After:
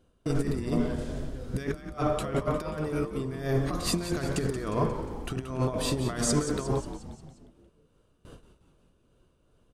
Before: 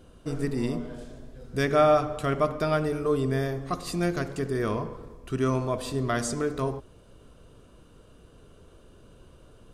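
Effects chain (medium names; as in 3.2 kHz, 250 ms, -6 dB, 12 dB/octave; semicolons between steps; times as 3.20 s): gate with hold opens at -40 dBFS; compressor with a negative ratio -31 dBFS, ratio -0.5; tremolo 2.5 Hz, depth 41%; frequency-shifting echo 178 ms, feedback 54%, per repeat -95 Hz, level -10.5 dB; trim +4 dB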